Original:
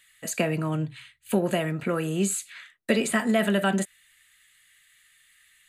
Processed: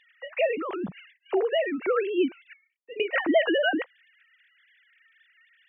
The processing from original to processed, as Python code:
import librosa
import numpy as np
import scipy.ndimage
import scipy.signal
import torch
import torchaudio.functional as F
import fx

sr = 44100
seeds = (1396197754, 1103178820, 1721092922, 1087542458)

y = fx.sine_speech(x, sr)
y = fx.formant_cascade(y, sr, vowel='i', at=(2.53, 3.0))